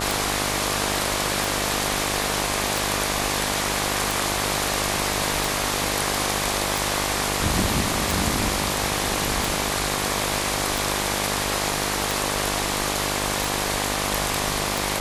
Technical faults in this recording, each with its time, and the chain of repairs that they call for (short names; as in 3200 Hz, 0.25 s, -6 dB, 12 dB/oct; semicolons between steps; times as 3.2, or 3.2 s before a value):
buzz 50 Hz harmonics 24 -29 dBFS
tick 45 rpm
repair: de-click; de-hum 50 Hz, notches 24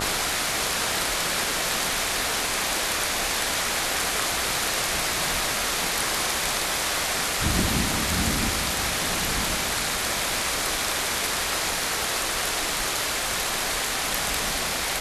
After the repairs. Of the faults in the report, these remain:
none